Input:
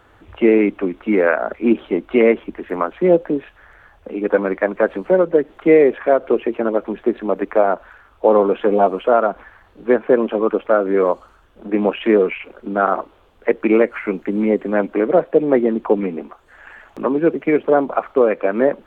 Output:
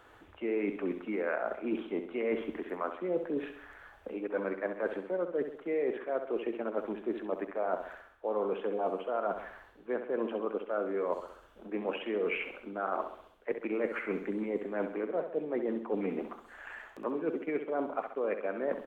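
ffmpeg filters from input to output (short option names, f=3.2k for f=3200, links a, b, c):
-af "bass=f=250:g=-7,treble=f=4k:g=2,areverse,acompressor=threshold=-25dB:ratio=6,areverse,aecho=1:1:66|132|198|264|330|396:0.355|0.174|0.0852|0.0417|0.0205|0.01,volume=-5.5dB"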